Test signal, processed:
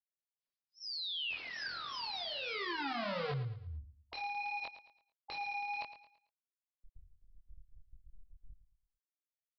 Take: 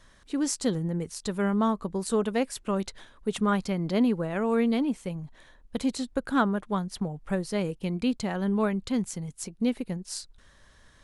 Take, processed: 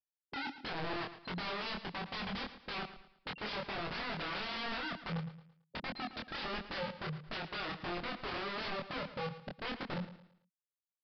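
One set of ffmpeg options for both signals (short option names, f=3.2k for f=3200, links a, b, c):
-filter_complex "[0:a]afftfilt=real='re*gte(hypot(re,im),0.112)':imag='im*gte(hypot(re,im),0.112)':win_size=1024:overlap=0.75,bandreject=f=1.6k:w=16,acrossover=split=160|1900[a][b][c];[a]acompressor=threshold=-47dB:ratio=4[d];[c]alimiter=level_in=16dB:limit=-24dB:level=0:latency=1:release=18,volume=-16dB[e];[d][b][e]amix=inputs=3:normalize=0,acrossover=split=130|540[f][g][h];[f]acompressor=threshold=-48dB:ratio=4[i];[g]acompressor=threshold=-35dB:ratio=4[j];[h]acompressor=threshold=-31dB:ratio=4[k];[i][j][k]amix=inputs=3:normalize=0,aeval=exprs='(mod(56.2*val(0)+1,2)-1)/56.2':c=same,flanger=delay=22.5:depth=3.5:speed=1.5,asoftclip=type=tanh:threshold=-36.5dB,asplit=2[l][m];[m]aecho=0:1:111|222|333|444:0.224|0.0806|0.029|0.0104[n];[l][n]amix=inputs=2:normalize=0,aresample=11025,aresample=44100,volume=5.5dB"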